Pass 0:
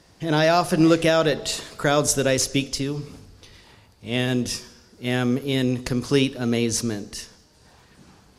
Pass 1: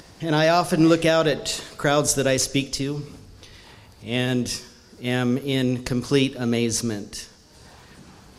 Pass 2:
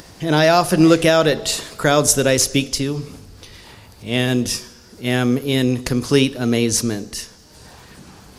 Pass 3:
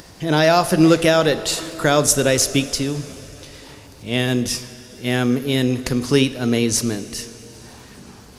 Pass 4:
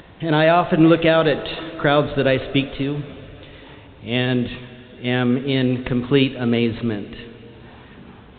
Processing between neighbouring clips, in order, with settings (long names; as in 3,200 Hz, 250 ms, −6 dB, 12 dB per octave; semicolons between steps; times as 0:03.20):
upward compression, threshold −39 dBFS
high-shelf EQ 12,000 Hz +9 dB; level +4.5 dB
convolution reverb RT60 4.5 s, pre-delay 6 ms, DRR 15 dB; level −1 dB
A-law companding 64 kbit/s 8,000 Hz